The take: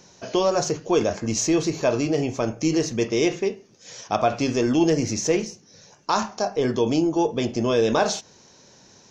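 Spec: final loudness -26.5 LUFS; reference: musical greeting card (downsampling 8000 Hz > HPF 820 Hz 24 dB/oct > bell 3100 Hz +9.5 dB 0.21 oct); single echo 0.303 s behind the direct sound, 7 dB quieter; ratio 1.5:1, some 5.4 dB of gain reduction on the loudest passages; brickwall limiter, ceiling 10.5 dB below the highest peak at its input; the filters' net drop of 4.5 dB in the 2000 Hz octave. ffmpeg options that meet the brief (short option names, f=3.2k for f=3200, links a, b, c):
-af "equalizer=f=2k:t=o:g=-7.5,acompressor=threshold=-31dB:ratio=1.5,alimiter=limit=-23.5dB:level=0:latency=1,aecho=1:1:303:0.447,aresample=8000,aresample=44100,highpass=f=820:w=0.5412,highpass=f=820:w=1.3066,equalizer=f=3.1k:t=o:w=0.21:g=9.5,volume=17dB"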